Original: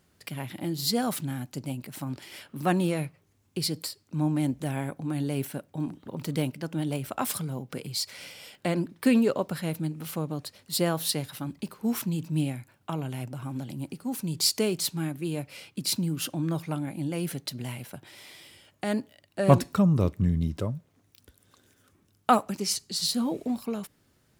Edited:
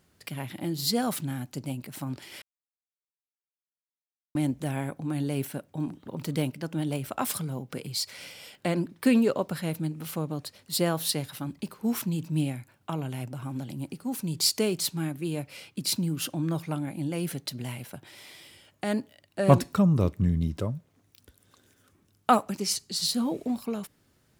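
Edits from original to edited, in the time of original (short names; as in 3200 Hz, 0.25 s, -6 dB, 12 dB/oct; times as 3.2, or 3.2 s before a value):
2.42–4.35 mute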